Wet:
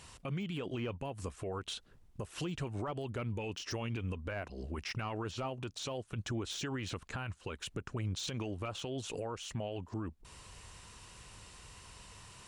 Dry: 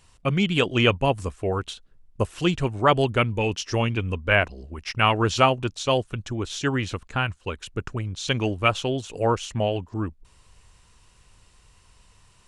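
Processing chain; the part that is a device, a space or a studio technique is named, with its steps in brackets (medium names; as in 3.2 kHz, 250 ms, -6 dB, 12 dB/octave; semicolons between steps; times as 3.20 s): podcast mastering chain (high-pass 85 Hz 6 dB/octave; de-esser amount 90%; compression 4:1, threshold -38 dBFS, peak gain reduction 18.5 dB; peak limiter -35.5 dBFS, peak gain reduction 11.5 dB; trim +6 dB; MP3 96 kbps 44.1 kHz)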